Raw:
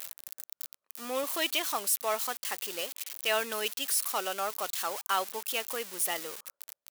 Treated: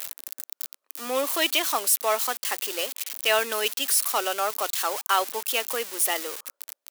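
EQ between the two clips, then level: steep high-pass 240 Hz 36 dB/oct; +6.5 dB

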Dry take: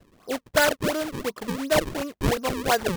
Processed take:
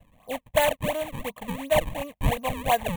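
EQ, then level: low shelf 61 Hz +6.5 dB; bell 540 Hz +2.5 dB 1.9 oct; fixed phaser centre 1400 Hz, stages 6; 0.0 dB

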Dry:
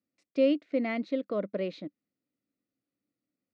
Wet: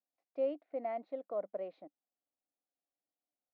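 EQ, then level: band-pass 760 Hz, Q 5.7; +4.5 dB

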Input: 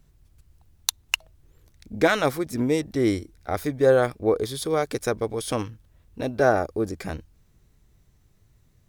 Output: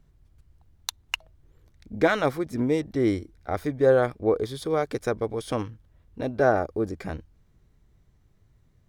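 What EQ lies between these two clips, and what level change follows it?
high shelf 4400 Hz -11 dB; notch 2600 Hz, Q 23; -1.0 dB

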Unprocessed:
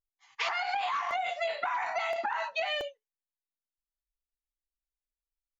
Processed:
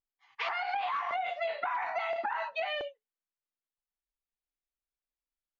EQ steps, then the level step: air absorption 230 m; low shelf 110 Hz -7 dB; 0.0 dB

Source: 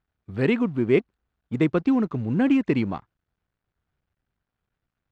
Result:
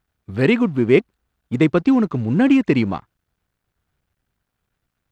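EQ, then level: high shelf 4000 Hz +6 dB; +5.5 dB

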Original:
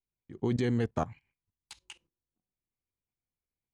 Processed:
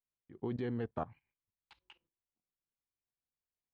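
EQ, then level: low shelf 290 Hz -7.5 dB; dynamic EQ 2100 Hz, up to -5 dB, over -57 dBFS, Q 3.3; air absorption 380 m; -3.5 dB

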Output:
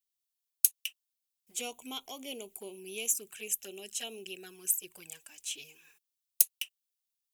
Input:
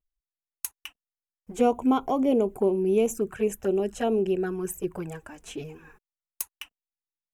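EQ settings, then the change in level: tilt +3.5 dB/oct; resonant high shelf 2000 Hz +13.5 dB, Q 1.5; -17.0 dB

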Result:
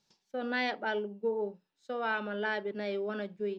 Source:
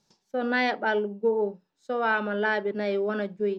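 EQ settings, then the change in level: dynamic EQ 2100 Hz, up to -4 dB, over -39 dBFS, Q 0.7; bell 2900 Hz +7 dB 1.8 oct; -7.5 dB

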